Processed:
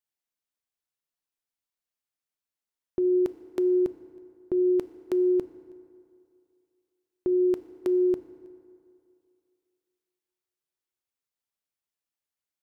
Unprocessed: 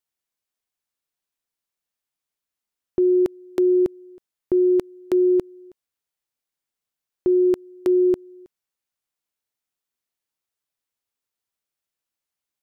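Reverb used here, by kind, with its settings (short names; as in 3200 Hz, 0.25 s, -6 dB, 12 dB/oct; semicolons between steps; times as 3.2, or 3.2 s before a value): FDN reverb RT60 2.5 s, low-frequency decay 0.85×, high-frequency decay 0.55×, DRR 11.5 dB; gain -6 dB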